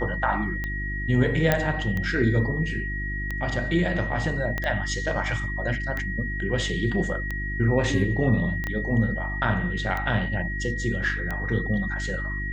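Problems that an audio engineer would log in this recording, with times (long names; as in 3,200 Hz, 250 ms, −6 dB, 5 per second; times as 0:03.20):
mains hum 50 Hz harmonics 7 −31 dBFS
scratch tick 45 rpm −17 dBFS
whistle 1,900 Hz −31 dBFS
0:01.52: click −6 dBFS
0:04.58: click −14 dBFS
0:08.67: click −17 dBFS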